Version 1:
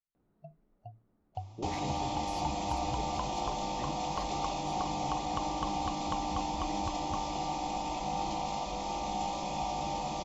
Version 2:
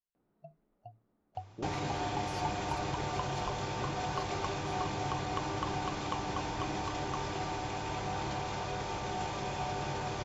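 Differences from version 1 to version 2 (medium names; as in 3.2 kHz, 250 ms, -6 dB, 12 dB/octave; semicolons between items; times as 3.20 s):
first sound: add bass shelf 140 Hz -10 dB; second sound: remove static phaser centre 420 Hz, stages 6; reverb: off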